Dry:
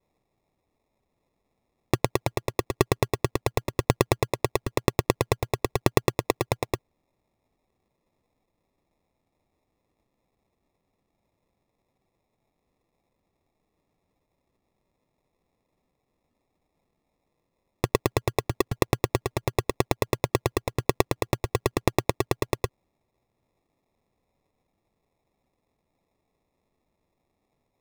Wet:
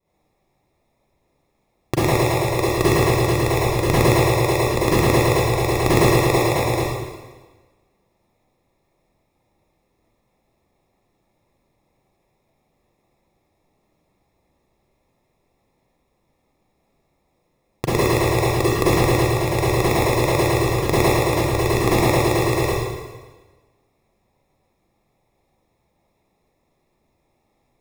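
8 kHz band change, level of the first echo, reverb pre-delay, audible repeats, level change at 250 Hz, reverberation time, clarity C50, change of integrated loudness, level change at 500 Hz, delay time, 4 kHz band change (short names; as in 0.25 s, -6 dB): +8.5 dB, none, 32 ms, none, +9.5 dB, 1.3 s, -5.5 dB, +9.0 dB, +8.5 dB, none, +8.0 dB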